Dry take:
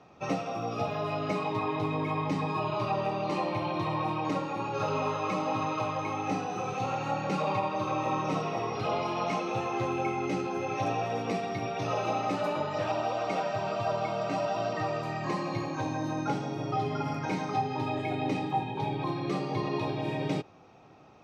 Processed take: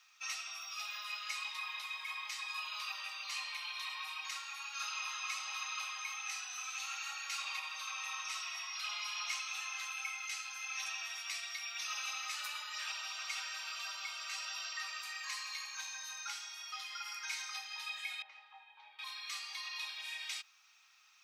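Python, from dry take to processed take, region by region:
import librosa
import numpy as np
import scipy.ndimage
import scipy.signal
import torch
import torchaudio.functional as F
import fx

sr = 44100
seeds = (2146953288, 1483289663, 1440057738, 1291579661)

y = fx.chain(x, sr, fx.bandpass_q(hz=560.0, q=1.0),
    fx.air_absorb(metres=130.0), at=(18.22, 18.99))
y = scipy.signal.sosfilt(scipy.signal.butter(4, 1300.0, 'highpass', fs=sr, output='sos'), y)
y = np.diff(y, prepend=0.0)
y = y * librosa.db_to_amplitude(9.5)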